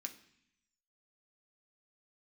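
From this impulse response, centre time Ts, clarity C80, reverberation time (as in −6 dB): 9 ms, 16.5 dB, 0.65 s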